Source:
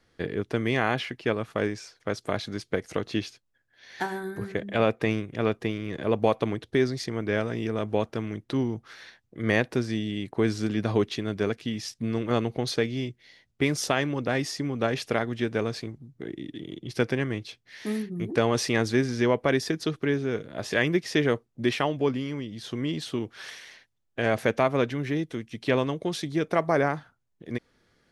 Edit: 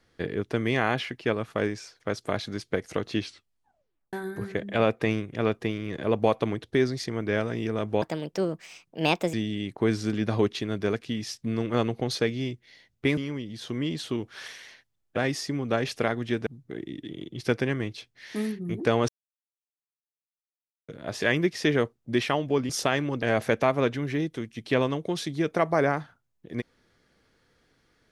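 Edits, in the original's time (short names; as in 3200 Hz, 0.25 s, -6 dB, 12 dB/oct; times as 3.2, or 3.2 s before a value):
3.21 tape stop 0.92 s
8.02–9.9 speed 143%
13.74–14.27 swap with 22.2–24.19
15.57–15.97 cut
18.59–20.39 mute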